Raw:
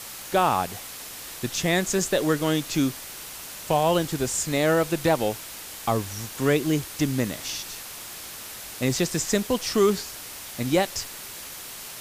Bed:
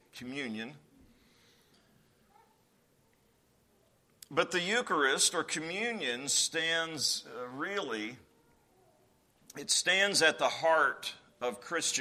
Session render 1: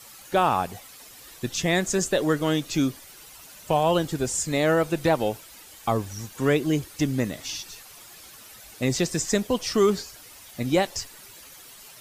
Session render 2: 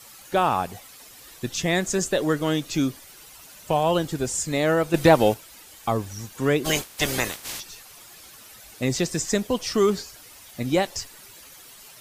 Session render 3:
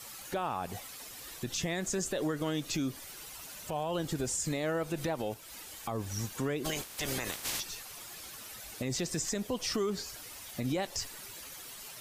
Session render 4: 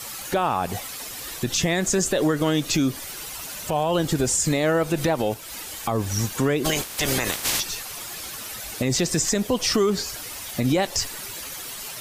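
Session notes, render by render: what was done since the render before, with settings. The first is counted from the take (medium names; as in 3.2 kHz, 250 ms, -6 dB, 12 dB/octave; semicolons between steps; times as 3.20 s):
noise reduction 11 dB, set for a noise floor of -39 dBFS
4.94–5.34 s: gain +6.5 dB; 6.64–7.59 s: spectral peaks clipped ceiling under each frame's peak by 25 dB
compression 6:1, threshold -26 dBFS, peak gain reduction 14.5 dB; peak limiter -24 dBFS, peak gain reduction 10.5 dB
trim +11.5 dB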